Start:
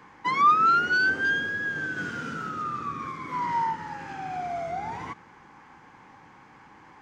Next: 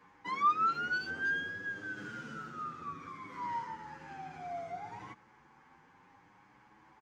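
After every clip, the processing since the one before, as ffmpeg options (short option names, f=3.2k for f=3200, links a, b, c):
-filter_complex "[0:a]asplit=2[a][b];[b]adelay=8.2,afreqshift=0.66[c];[a][c]amix=inputs=2:normalize=1,volume=-7.5dB"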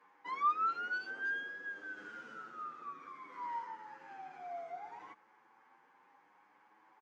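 -af "highpass=430,highshelf=f=3.1k:g=-9.5,volume=-2dB"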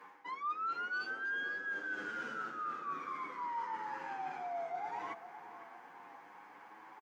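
-filter_complex "[0:a]areverse,acompressor=threshold=-49dB:ratio=5,areverse,asplit=2[a][b];[b]adelay=508,lowpass=f=2k:p=1,volume=-12dB,asplit=2[c][d];[d]adelay=508,lowpass=f=2k:p=1,volume=0.49,asplit=2[e][f];[f]adelay=508,lowpass=f=2k:p=1,volume=0.49,asplit=2[g][h];[h]adelay=508,lowpass=f=2k:p=1,volume=0.49,asplit=2[i][j];[j]adelay=508,lowpass=f=2k:p=1,volume=0.49[k];[a][c][e][g][i][k]amix=inputs=6:normalize=0,volume=11dB"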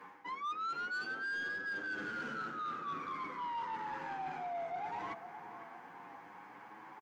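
-af "bass=f=250:g=9,treble=f=4k:g=-2,asoftclip=type=tanh:threshold=-36dB,volume=2dB"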